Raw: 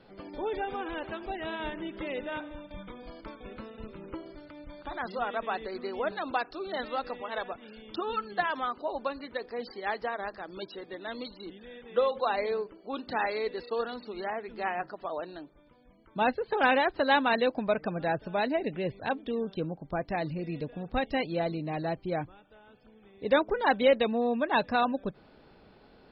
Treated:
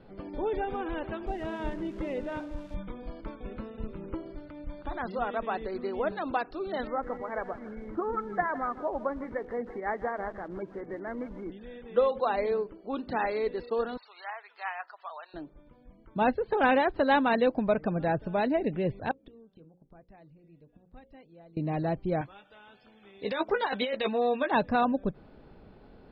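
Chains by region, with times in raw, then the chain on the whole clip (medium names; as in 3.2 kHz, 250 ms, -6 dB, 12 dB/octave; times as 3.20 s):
1.27–2.75 s: zero-crossing glitches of -33.5 dBFS + treble shelf 2.2 kHz -7.5 dB
6.87–11.52 s: upward compressor, threshold -36 dBFS + brick-wall FIR low-pass 2.3 kHz + bit-crushed delay 158 ms, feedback 35%, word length 8-bit, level -14.5 dB
13.97–15.34 s: high-pass 900 Hz 24 dB/octave + treble shelf 4.2 kHz +4.5 dB
19.11–21.57 s: inverted gate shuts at -33 dBFS, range -25 dB + hum notches 60/120/180/240/300/360/420/480/540 Hz
22.21–24.51 s: tilt EQ +4.5 dB/octave + doubling 15 ms -6.5 dB + compressor with a negative ratio -28 dBFS
whole clip: Bessel low-pass 4.7 kHz; tilt EQ -2 dB/octave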